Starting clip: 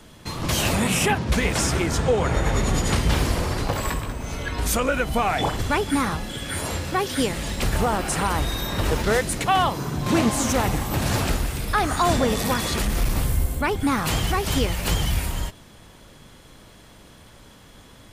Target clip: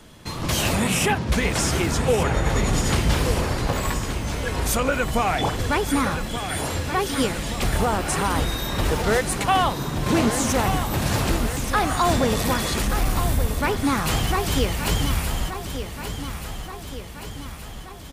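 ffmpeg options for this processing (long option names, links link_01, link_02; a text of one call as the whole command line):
ffmpeg -i in.wav -filter_complex "[0:a]asoftclip=type=hard:threshold=-12dB,asplit=2[link_01][link_02];[link_02]aecho=0:1:1177|2354|3531|4708|5885|7062|8239:0.335|0.194|0.113|0.0654|0.0379|0.022|0.0128[link_03];[link_01][link_03]amix=inputs=2:normalize=0" out.wav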